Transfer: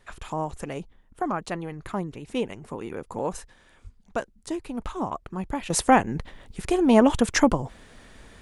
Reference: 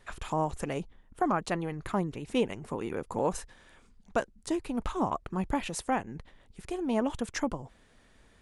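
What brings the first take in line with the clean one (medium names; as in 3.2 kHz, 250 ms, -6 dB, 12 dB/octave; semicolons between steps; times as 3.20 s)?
de-plosive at 3.83 s; trim 0 dB, from 5.70 s -12 dB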